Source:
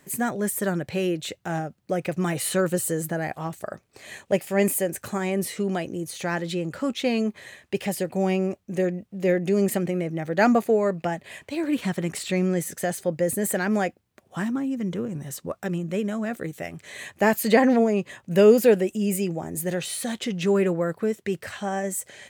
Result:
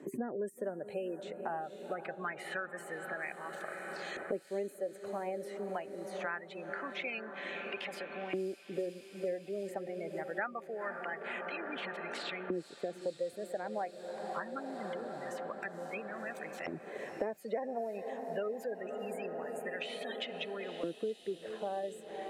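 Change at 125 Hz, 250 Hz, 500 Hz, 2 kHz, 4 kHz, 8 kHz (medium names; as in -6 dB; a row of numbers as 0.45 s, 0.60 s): -23.0 dB, -20.0 dB, -14.0 dB, -9.0 dB, -10.5 dB, -25.0 dB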